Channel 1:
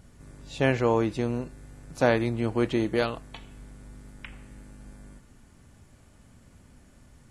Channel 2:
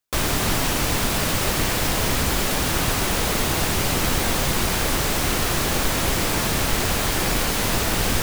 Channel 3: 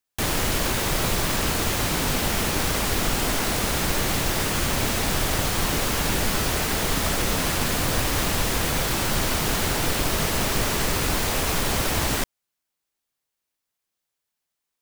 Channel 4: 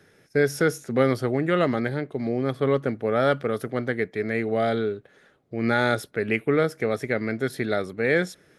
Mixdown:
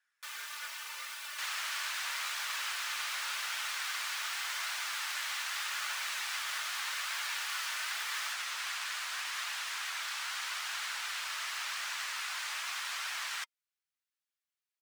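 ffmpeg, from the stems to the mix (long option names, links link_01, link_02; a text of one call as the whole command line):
ffmpeg -i stem1.wav -i stem2.wav -i stem3.wav -i stem4.wav -filter_complex "[0:a]volume=-15.5dB[link_01];[1:a]aecho=1:1:3.4:0.85,adelay=100,volume=-13dB[link_02];[2:a]acrossover=split=9100[link_03][link_04];[link_04]acompressor=threshold=-39dB:ratio=4:attack=1:release=60[link_05];[link_03][link_05]amix=inputs=2:normalize=0,adelay=1200,volume=-3dB[link_06];[3:a]volume=-15.5dB[link_07];[link_01][link_02][link_06][link_07]amix=inputs=4:normalize=0,highpass=frequency=1200:width=0.5412,highpass=frequency=1200:width=1.3066,highshelf=frequency=5400:gain=-7,flanger=delay=1.1:depth=2.5:regen=-58:speed=0.84:shape=triangular" out.wav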